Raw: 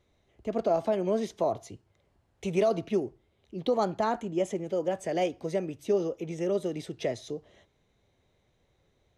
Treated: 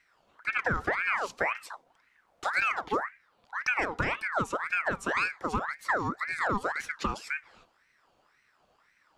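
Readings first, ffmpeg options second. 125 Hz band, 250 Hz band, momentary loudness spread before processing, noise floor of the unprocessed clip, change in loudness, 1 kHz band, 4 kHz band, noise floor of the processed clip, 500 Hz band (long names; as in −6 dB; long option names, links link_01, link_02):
−2.5 dB, −7.0 dB, 11 LU, −71 dBFS, 0.0 dB, +3.5 dB, +1.0 dB, −69 dBFS, −9.5 dB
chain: -af "acompressor=threshold=-27dB:ratio=5,aeval=exprs='val(0)*sin(2*PI*1300*n/s+1300*0.55/1.9*sin(2*PI*1.9*n/s))':channel_layout=same,volume=5dB"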